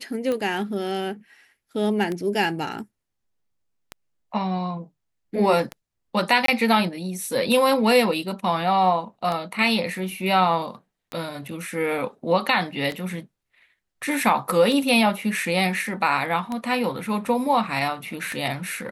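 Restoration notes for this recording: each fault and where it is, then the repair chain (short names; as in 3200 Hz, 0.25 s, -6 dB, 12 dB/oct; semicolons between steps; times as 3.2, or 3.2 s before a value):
tick 33 1/3 rpm -15 dBFS
6.46–6.48 gap 23 ms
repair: de-click; interpolate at 6.46, 23 ms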